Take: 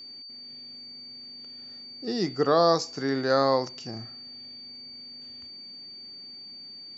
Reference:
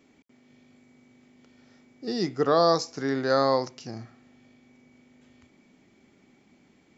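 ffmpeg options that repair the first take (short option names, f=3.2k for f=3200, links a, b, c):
-af "bandreject=f=4.6k:w=30"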